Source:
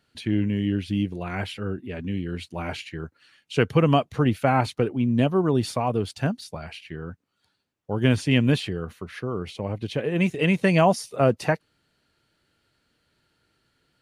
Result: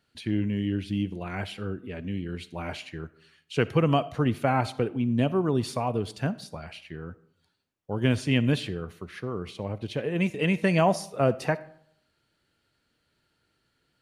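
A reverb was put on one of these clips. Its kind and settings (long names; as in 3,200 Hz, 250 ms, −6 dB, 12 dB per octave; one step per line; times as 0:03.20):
comb and all-pass reverb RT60 0.66 s, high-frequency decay 0.6×, pre-delay 15 ms, DRR 17 dB
level −3.5 dB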